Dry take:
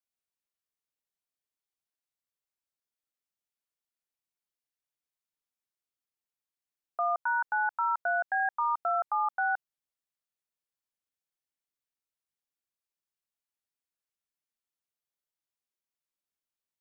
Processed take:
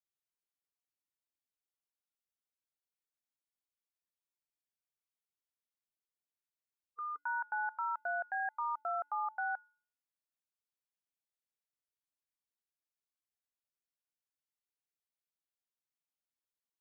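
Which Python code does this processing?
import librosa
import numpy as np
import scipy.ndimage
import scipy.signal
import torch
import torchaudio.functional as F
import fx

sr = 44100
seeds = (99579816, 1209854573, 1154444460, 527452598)

y = fx.spec_repair(x, sr, seeds[0], start_s=6.9, length_s=0.25, low_hz=490.0, high_hz=1200.0, source='before')
y = fx.comb_fb(y, sr, f0_hz=290.0, decay_s=0.45, harmonics='odd', damping=0.0, mix_pct=60)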